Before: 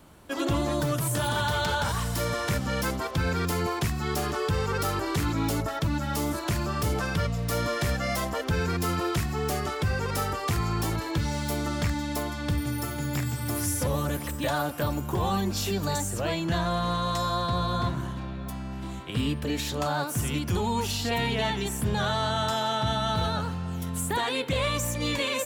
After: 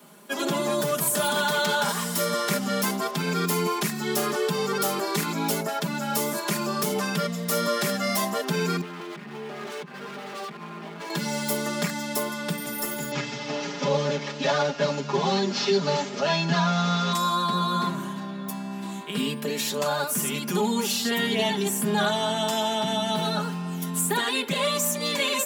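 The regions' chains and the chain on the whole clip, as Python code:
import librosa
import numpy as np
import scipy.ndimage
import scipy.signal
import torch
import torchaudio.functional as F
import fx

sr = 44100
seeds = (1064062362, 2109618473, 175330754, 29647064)

y = fx.chain(x, sr, fx.over_compress(threshold_db=-32.0, ratio=-1.0),
    fx.lowpass(hz=3000.0, slope=24),
    fx.clip_hard(threshold_db=-36.5), at=(8.81, 11.1))
y = fx.chain(y, sr, fx.cvsd(bps=32000),
    fx.comb(ms=7.2, depth=0.94), at=(13.11, 17.13))
y = scipy.signal.sosfilt(scipy.signal.butter(8, 160.0, 'highpass', fs=sr, output='sos'), y)
y = fx.high_shelf(y, sr, hz=6900.0, db=6.5)
y = y + 0.97 * np.pad(y, (int(4.9 * sr / 1000.0), 0))[:len(y)]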